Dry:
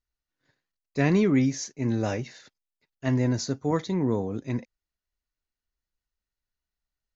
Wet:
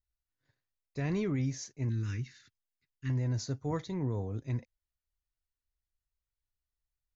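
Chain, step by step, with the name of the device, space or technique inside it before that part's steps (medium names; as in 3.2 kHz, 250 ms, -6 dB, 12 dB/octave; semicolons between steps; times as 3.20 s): car stereo with a boomy subwoofer (resonant low shelf 150 Hz +8 dB, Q 1.5; peak limiter -16 dBFS, peak gain reduction 5.5 dB); 1.89–3.10 s: Chebyshev band-stop 300–1400 Hz, order 2; trim -8.5 dB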